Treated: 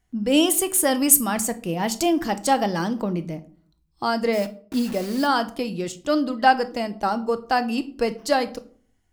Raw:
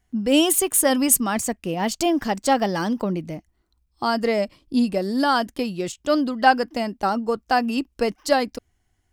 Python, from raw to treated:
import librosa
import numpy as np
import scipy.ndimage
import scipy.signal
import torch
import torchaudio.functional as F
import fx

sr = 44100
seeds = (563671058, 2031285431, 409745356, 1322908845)

y = fx.peak_eq(x, sr, hz=13000.0, db=5.5, octaves=1.2, at=(0.95, 2.64))
y = fx.quant_dither(y, sr, seeds[0], bits=6, dither='none', at=(4.32, 5.26), fade=0.02)
y = fx.room_shoebox(y, sr, seeds[1], volume_m3=440.0, walls='furnished', distance_m=0.61)
y = F.gain(torch.from_numpy(y), -1.5).numpy()